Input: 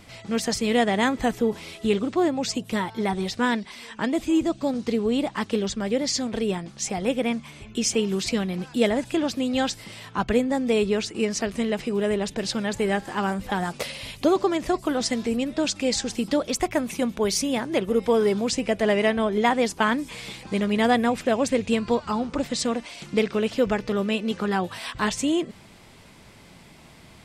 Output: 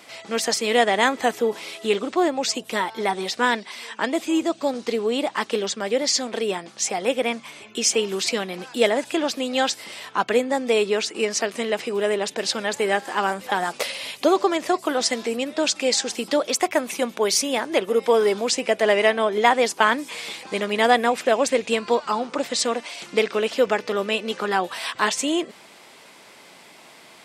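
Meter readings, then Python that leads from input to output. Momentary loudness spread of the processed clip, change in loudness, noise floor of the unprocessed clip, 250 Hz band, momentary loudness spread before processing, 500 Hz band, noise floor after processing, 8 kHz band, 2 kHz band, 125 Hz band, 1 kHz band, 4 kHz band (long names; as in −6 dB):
7 LU, +2.0 dB, −49 dBFS, −3.5 dB, 7 LU, +3.0 dB, −48 dBFS, +5.0 dB, +5.0 dB, can't be measured, +4.5 dB, +5.0 dB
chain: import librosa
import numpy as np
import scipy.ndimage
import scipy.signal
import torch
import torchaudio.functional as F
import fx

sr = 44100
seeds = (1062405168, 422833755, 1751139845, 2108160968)

y = scipy.signal.sosfilt(scipy.signal.butter(2, 410.0, 'highpass', fs=sr, output='sos'), x)
y = y * 10.0 ** (5.0 / 20.0)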